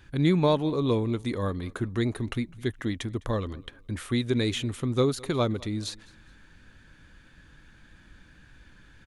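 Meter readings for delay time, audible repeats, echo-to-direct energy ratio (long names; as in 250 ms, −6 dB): 208 ms, 2, −23.5 dB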